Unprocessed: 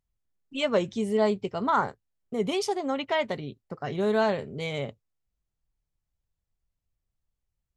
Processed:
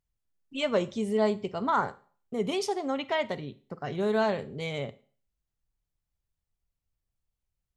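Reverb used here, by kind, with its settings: Schroeder reverb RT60 0.43 s, combs from 33 ms, DRR 17 dB; trim -2 dB

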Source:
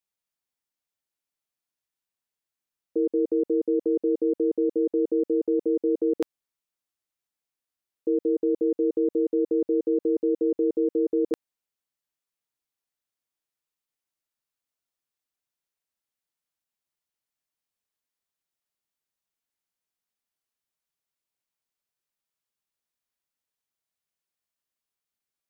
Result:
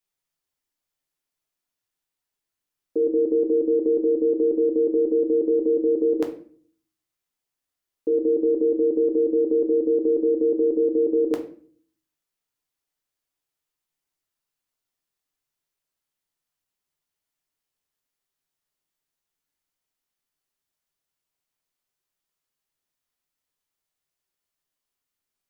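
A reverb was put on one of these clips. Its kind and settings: simulated room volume 47 m³, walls mixed, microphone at 0.44 m; trim +2 dB

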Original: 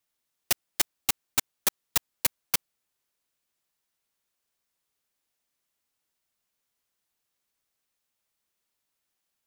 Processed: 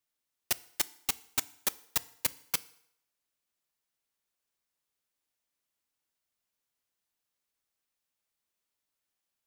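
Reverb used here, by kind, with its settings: FDN reverb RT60 0.72 s, low-frequency decay 0.8×, high-frequency decay 0.9×, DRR 16.5 dB; trim -5 dB

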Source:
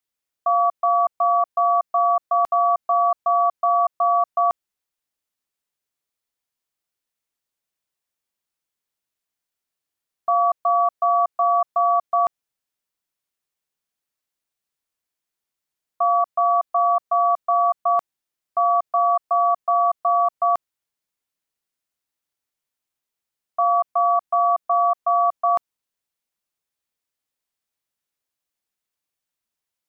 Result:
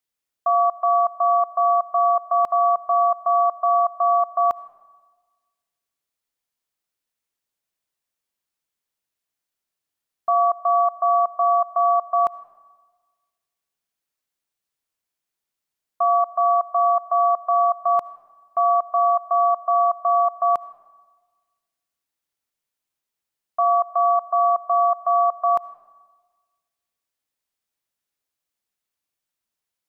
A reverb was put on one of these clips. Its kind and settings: algorithmic reverb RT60 1.4 s, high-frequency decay 0.5×, pre-delay 35 ms, DRR 18 dB

